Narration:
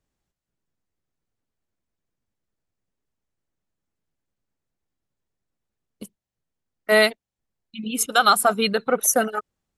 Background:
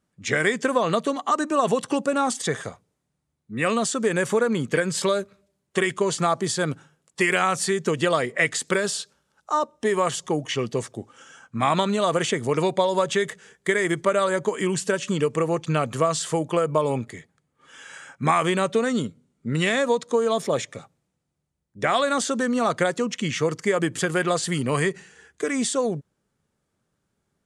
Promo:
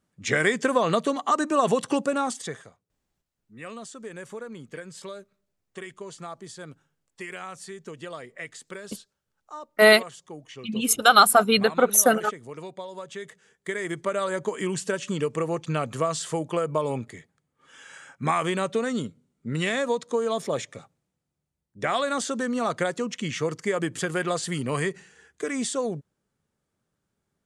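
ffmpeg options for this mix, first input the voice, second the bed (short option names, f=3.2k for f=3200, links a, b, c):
-filter_complex "[0:a]adelay=2900,volume=1.5dB[a];[1:a]volume=12dB,afade=t=out:st=1.96:d=0.72:silence=0.158489,afade=t=in:st=13.06:d=1.46:silence=0.237137[b];[a][b]amix=inputs=2:normalize=0"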